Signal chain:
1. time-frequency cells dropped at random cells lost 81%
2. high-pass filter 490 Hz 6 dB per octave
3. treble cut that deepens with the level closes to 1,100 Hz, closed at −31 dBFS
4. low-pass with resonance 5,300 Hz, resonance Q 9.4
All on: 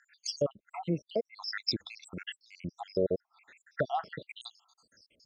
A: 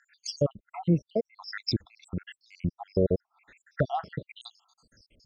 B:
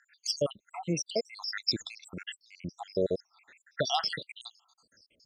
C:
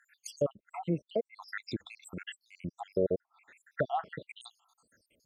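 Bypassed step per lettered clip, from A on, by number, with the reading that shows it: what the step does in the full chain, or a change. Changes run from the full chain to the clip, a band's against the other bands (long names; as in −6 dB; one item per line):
2, 125 Hz band +9.5 dB
3, 4 kHz band +5.0 dB
4, 4 kHz band −11.0 dB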